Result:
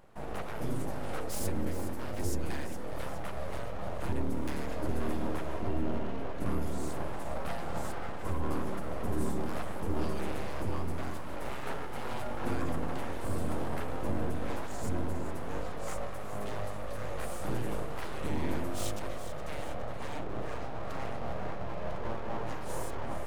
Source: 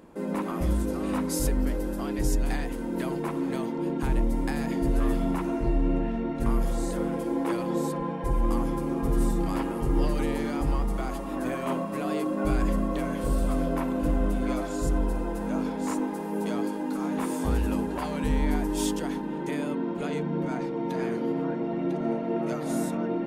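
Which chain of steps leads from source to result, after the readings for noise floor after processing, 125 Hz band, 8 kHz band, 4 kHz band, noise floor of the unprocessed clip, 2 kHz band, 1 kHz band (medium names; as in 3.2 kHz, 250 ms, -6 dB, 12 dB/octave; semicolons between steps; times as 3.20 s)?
-34 dBFS, -6.0 dB, -6.0 dB, -4.0 dB, -32 dBFS, -3.5 dB, -5.0 dB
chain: full-wave rectifier; two-band feedback delay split 730 Hz, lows 197 ms, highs 415 ms, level -11.5 dB; trim -5.5 dB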